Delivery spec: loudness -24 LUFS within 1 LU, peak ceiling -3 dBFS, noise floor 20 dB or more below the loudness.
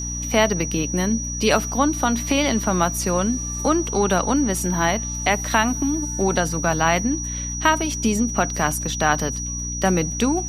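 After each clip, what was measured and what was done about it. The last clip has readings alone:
hum 60 Hz; harmonics up to 300 Hz; hum level -28 dBFS; steady tone 5800 Hz; tone level -28 dBFS; loudness -21.0 LUFS; peak -4.0 dBFS; loudness target -24.0 LUFS
-> de-hum 60 Hz, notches 5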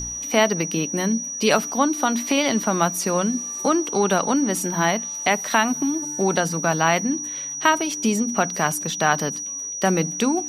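hum none; steady tone 5800 Hz; tone level -28 dBFS
-> notch 5800 Hz, Q 30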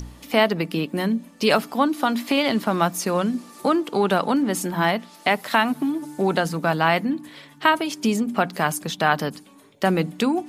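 steady tone none; loudness -22.5 LUFS; peak -4.5 dBFS; loudness target -24.0 LUFS
-> gain -1.5 dB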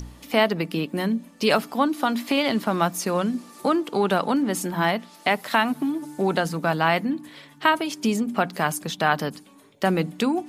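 loudness -24.0 LUFS; peak -6.0 dBFS; noise floor -50 dBFS

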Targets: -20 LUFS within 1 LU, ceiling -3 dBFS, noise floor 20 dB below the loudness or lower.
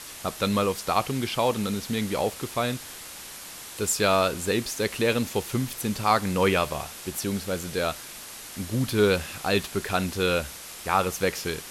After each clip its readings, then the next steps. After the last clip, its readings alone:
noise floor -41 dBFS; noise floor target -47 dBFS; loudness -26.5 LUFS; peak -8.0 dBFS; loudness target -20.0 LUFS
-> denoiser 6 dB, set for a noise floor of -41 dBFS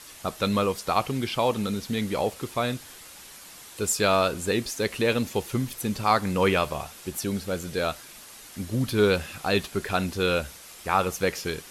noise floor -46 dBFS; noise floor target -47 dBFS
-> denoiser 6 dB, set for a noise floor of -46 dBFS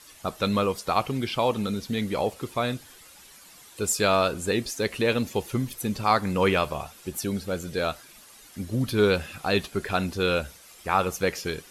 noise floor -51 dBFS; loudness -26.5 LUFS; peak -8.0 dBFS; loudness target -20.0 LUFS
-> gain +6.5 dB; limiter -3 dBFS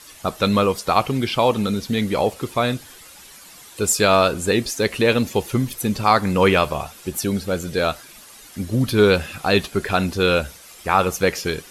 loudness -20.0 LUFS; peak -3.0 dBFS; noise floor -44 dBFS

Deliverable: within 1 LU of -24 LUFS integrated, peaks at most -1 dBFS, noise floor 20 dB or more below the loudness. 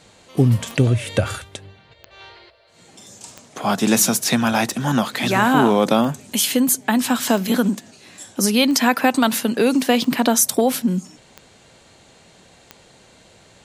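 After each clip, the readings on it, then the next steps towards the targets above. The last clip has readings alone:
clicks 10; loudness -18.5 LUFS; peak -2.0 dBFS; loudness target -24.0 LUFS
-> de-click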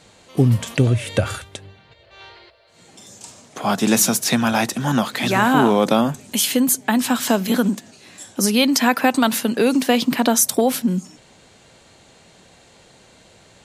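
clicks 0; loudness -18.5 LUFS; peak -2.0 dBFS; loudness target -24.0 LUFS
-> gain -5.5 dB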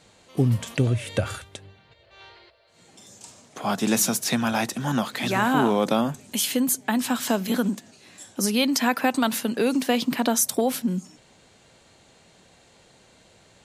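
loudness -24.0 LUFS; peak -7.5 dBFS; noise floor -57 dBFS

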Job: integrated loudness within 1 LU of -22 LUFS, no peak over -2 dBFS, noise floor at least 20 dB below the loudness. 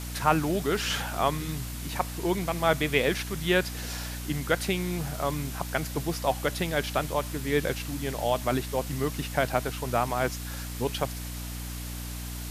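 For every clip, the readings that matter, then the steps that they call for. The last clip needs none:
hum 60 Hz; harmonics up to 300 Hz; hum level -34 dBFS; noise floor -36 dBFS; noise floor target -49 dBFS; loudness -29.0 LUFS; peak -8.0 dBFS; loudness target -22.0 LUFS
-> de-hum 60 Hz, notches 5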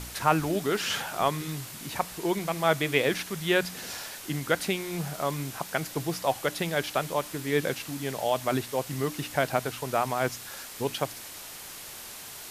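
hum none; noise floor -43 dBFS; noise floor target -49 dBFS
-> denoiser 6 dB, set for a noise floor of -43 dBFS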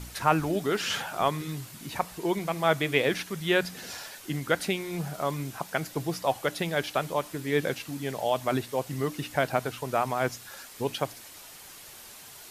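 noise floor -47 dBFS; noise floor target -50 dBFS
-> denoiser 6 dB, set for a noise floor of -47 dBFS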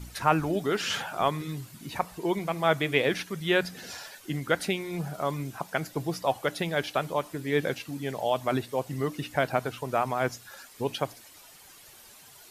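noise floor -52 dBFS; loudness -29.5 LUFS; peak -8.0 dBFS; loudness target -22.0 LUFS
-> gain +7.5 dB; limiter -2 dBFS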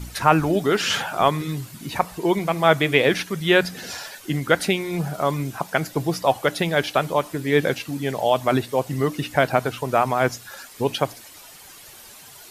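loudness -22.0 LUFS; peak -2.0 dBFS; noise floor -45 dBFS

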